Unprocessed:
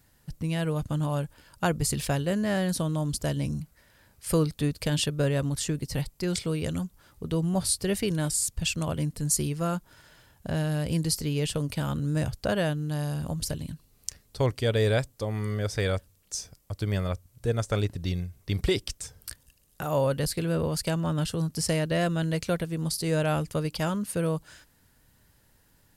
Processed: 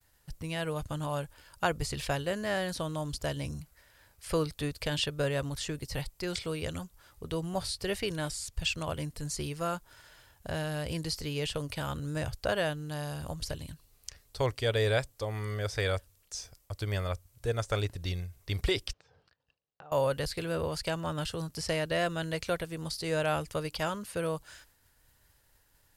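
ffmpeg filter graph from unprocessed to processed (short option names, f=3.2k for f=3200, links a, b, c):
-filter_complex "[0:a]asettb=1/sr,asplit=3[a][b][c];[a]atrim=end=18.934[d];[b]atrim=start=18.93:end=19.92,asetpts=PTS-STARTPTS,afade=t=in:d=0.004:c=qsin,afade=t=out:st=0.986:d=0.004:c=qsin,acompressor=threshold=-49dB:ratio=6:attack=3.2:release=140:knee=1:detection=peak,highpass=130,equalizer=f=160:t=q:w=4:g=6,equalizer=f=480:t=q:w=4:g=5,equalizer=f=780:t=q:w=4:g=5,equalizer=f=2.1k:t=q:w=4:g=-6,equalizer=f=3.4k:t=q:w=4:g=-5,lowpass=f=3.8k:w=0.5412,lowpass=f=3.8k:w=1.3066[e];[c]atrim=start=19.916[f];[d][e]acrossfade=d=0.004:c1=hsin:c2=qsin[g];[g][f]acrossfade=d=0.004:c1=qsin:c2=hsin,agate=range=-33dB:threshold=-59dB:ratio=3:detection=peak,acrossover=split=5100[h][i];[i]acompressor=threshold=-44dB:ratio=4:attack=1:release=60[j];[h][j]amix=inputs=2:normalize=0,equalizer=f=200:t=o:w=1.6:g=-11"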